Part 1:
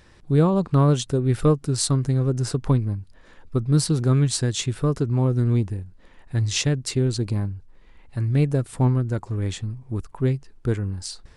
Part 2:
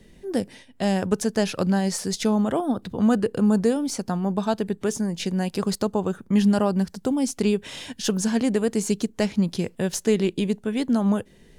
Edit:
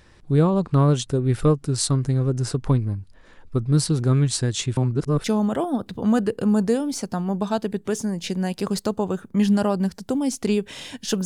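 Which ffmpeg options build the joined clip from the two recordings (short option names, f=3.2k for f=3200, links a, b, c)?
-filter_complex "[0:a]apad=whole_dur=11.25,atrim=end=11.25,asplit=2[a][b];[a]atrim=end=4.772[c];[b]atrim=start=4.768:end=5.242,asetpts=PTS-STARTPTS,areverse[d];[1:a]atrim=start=2.198:end=8.21[e];[c][d]acrossfade=d=0.004:c1=hsin:c2=hsin[f];[f][e]acrossfade=d=0.004:c1=hsin:c2=hsin"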